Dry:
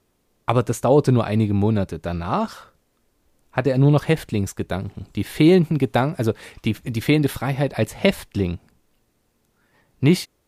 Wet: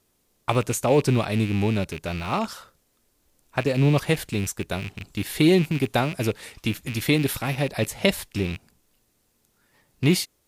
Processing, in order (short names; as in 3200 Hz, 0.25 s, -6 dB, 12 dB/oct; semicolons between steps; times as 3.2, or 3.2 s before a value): rattling part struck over -30 dBFS, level -23 dBFS; high shelf 3300 Hz +9.5 dB; gain -4 dB